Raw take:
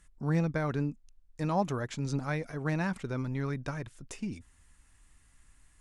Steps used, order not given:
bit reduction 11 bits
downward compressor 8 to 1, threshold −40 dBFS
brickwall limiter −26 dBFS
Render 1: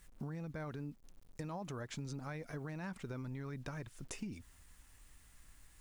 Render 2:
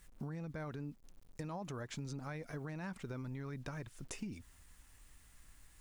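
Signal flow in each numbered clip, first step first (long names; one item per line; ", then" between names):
brickwall limiter, then bit reduction, then downward compressor
bit reduction, then brickwall limiter, then downward compressor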